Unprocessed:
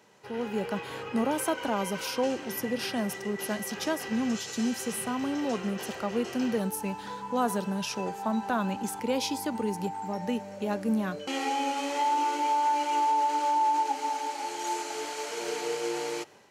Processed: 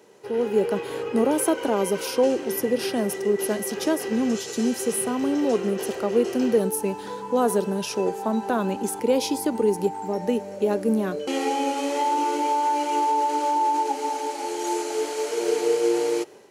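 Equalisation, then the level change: peaking EQ 400 Hz +13 dB 1.1 oct; treble shelf 5.2 kHz +5.5 dB; peaking EQ 10 kHz +5 dB 0.2 oct; 0.0 dB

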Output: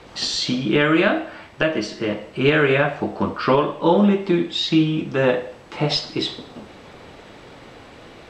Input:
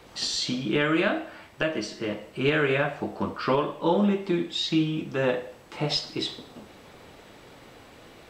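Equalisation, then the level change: distance through air 58 m; +7.0 dB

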